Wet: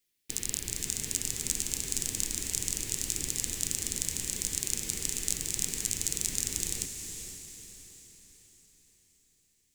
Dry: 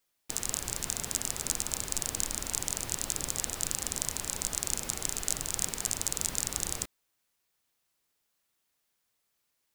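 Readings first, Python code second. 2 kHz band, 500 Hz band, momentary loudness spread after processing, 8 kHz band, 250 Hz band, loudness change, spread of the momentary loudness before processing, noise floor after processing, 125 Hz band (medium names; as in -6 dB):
-1.0 dB, -3.0 dB, 10 LU, +1.0 dB, +1.0 dB, +0.5 dB, 2 LU, -71 dBFS, +1.0 dB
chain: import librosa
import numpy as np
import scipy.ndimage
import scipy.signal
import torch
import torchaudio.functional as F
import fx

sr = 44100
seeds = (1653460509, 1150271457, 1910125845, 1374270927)

y = fx.band_shelf(x, sr, hz=900.0, db=-13.0, octaves=1.7)
y = fx.echo_diffused(y, sr, ms=470, feedback_pct=47, wet_db=-7.5)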